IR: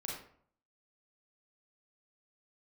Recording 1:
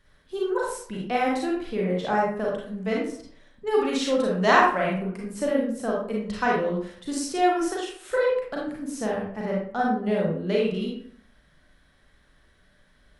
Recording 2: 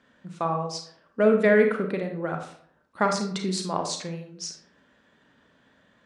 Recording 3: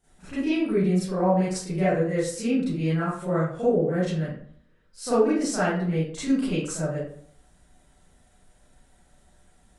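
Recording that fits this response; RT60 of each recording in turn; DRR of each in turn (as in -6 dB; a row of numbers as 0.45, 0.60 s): 1; 0.60, 0.60, 0.60 s; -3.5, 4.0, -13.5 dB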